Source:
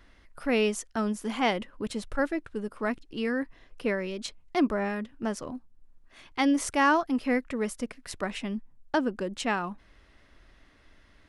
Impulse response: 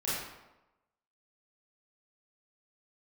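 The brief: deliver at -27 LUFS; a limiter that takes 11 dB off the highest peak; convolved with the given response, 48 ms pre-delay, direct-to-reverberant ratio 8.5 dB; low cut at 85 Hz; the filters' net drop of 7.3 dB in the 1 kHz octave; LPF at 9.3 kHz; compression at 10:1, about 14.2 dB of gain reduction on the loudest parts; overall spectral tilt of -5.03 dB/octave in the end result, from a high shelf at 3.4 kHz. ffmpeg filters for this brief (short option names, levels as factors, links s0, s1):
-filter_complex "[0:a]highpass=85,lowpass=9300,equalizer=f=1000:t=o:g=-9,highshelf=f=3400:g=-7,acompressor=threshold=0.0178:ratio=10,alimiter=level_in=2.51:limit=0.0631:level=0:latency=1,volume=0.398,asplit=2[s0][s1];[1:a]atrim=start_sample=2205,adelay=48[s2];[s1][s2]afir=irnorm=-1:irlink=0,volume=0.178[s3];[s0][s3]amix=inputs=2:normalize=0,volume=5.62"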